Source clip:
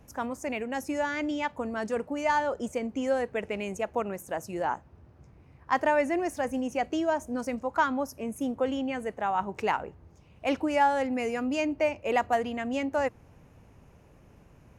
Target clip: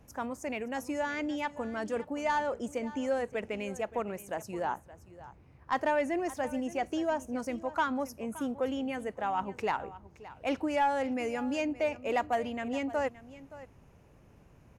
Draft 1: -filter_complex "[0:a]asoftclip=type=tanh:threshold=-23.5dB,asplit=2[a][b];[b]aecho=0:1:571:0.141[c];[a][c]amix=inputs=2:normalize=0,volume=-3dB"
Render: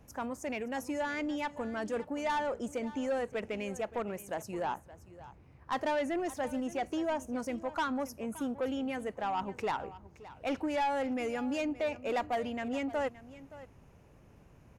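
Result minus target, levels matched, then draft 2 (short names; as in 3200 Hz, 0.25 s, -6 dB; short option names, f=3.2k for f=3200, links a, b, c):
soft clip: distortion +10 dB
-filter_complex "[0:a]asoftclip=type=tanh:threshold=-15.5dB,asplit=2[a][b];[b]aecho=0:1:571:0.141[c];[a][c]amix=inputs=2:normalize=0,volume=-3dB"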